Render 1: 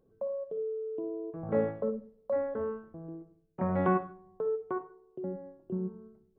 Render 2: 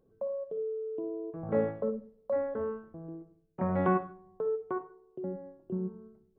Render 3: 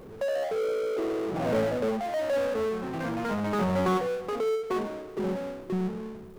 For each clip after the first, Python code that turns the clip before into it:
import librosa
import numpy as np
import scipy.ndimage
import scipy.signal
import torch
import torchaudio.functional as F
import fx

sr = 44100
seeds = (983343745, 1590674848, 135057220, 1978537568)

y1 = x
y2 = fx.echo_pitch(y1, sr, ms=92, semitones=2, count=3, db_per_echo=-6.0)
y2 = fx.power_curve(y2, sr, exponent=0.5)
y2 = y2 * librosa.db_to_amplitude(-3.0)